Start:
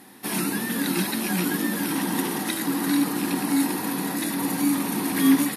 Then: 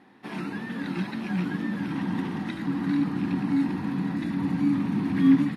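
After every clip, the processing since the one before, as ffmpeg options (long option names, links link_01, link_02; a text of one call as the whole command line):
ffmpeg -i in.wav -af "lowpass=2600,asubboost=boost=10:cutoff=160,volume=-5.5dB" out.wav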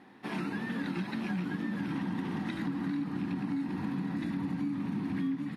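ffmpeg -i in.wav -af "acompressor=threshold=-30dB:ratio=10" out.wav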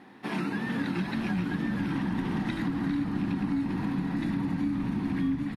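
ffmpeg -i in.wav -filter_complex "[0:a]asplit=5[link_01][link_02][link_03][link_04][link_05];[link_02]adelay=407,afreqshift=-74,volume=-11.5dB[link_06];[link_03]adelay=814,afreqshift=-148,volume=-18.6dB[link_07];[link_04]adelay=1221,afreqshift=-222,volume=-25.8dB[link_08];[link_05]adelay=1628,afreqshift=-296,volume=-32.9dB[link_09];[link_01][link_06][link_07][link_08][link_09]amix=inputs=5:normalize=0,volume=4dB" out.wav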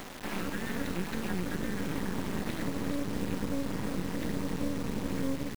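ffmpeg -i in.wav -af "acompressor=mode=upward:threshold=-32dB:ratio=2.5,acrusher=bits=4:dc=4:mix=0:aa=0.000001" out.wav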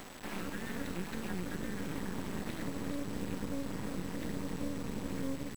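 ffmpeg -i in.wav -af "aeval=exprs='val(0)+0.00141*sin(2*PI*7900*n/s)':channel_layout=same,volume=-5dB" out.wav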